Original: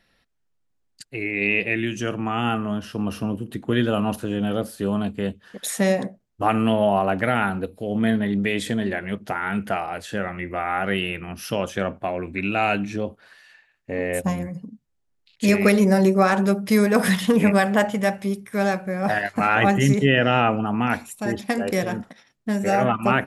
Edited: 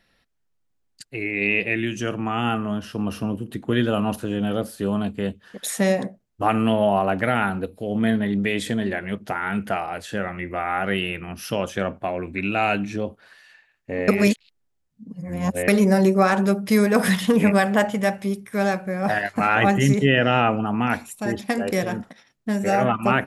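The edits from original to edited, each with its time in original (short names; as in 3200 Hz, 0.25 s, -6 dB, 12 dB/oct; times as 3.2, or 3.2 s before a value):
14.08–15.68 reverse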